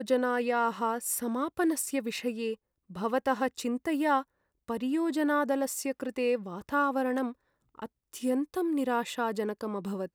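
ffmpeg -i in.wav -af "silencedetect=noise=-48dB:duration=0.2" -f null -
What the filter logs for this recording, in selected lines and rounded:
silence_start: 2.55
silence_end: 2.90 | silence_duration: 0.35
silence_start: 4.23
silence_end: 4.68 | silence_duration: 0.45
silence_start: 7.33
silence_end: 7.75 | silence_duration: 0.42
silence_start: 7.86
silence_end: 8.13 | silence_duration: 0.27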